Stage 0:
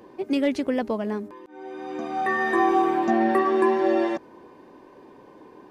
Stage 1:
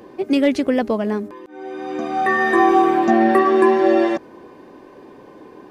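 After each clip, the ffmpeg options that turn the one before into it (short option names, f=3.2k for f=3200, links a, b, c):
-af "bandreject=f=940:w=9.7,volume=6.5dB"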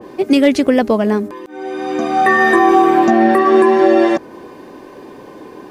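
-af "highshelf=f=4.3k:g=7,alimiter=limit=-8dB:level=0:latency=1:release=235,adynamicequalizer=threshold=0.0158:dfrequency=2100:dqfactor=0.7:tfrequency=2100:tqfactor=0.7:attack=5:release=100:ratio=0.375:range=1.5:mode=cutabove:tftype=highshelf,volume=6.5dB"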